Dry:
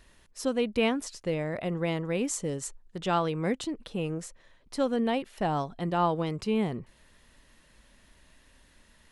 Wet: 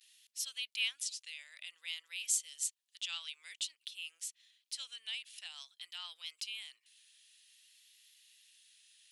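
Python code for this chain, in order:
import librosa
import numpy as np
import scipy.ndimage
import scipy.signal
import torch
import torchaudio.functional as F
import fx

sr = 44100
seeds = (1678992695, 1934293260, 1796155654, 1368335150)

y = fx.vibrato(x, sr, rate_hz=0.53, depth_cents=47.0)
y = scipy.signal.sosfilt(scipy.signal.cheby1(3, 1.0, 3000.0, 'highpass', fs=sr, output='sos'), y)
y = y * 10.0 ** (3.0 / 20.0)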